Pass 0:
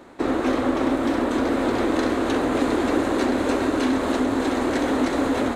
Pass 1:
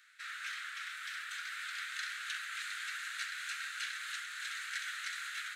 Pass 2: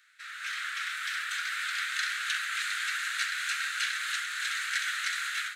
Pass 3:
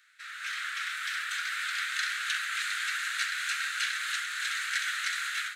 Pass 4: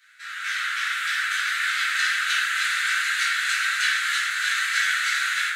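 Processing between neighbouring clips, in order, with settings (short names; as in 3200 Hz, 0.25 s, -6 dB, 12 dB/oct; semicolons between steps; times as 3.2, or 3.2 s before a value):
steep high-pass 1400 Hz 72 dB/oct; gain -6.5 dB
AGC gain up to 9 dB
nothing audible
reverb RT60 0.65 s, pre-delay 3 ms, DRR -8 dB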